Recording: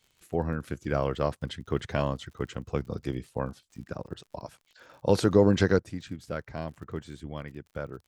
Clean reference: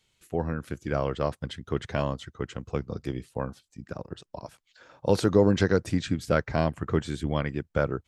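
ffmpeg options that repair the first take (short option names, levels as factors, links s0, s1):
-af "adeclick=t=4,asetnsamples=n=441:p=0,asendcmd='5.79 volume volume 10.5dB',volume=1"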